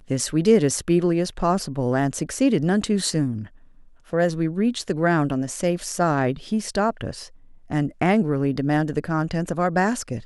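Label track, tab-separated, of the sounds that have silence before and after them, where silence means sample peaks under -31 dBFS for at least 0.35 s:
4.130000	7.250000	sound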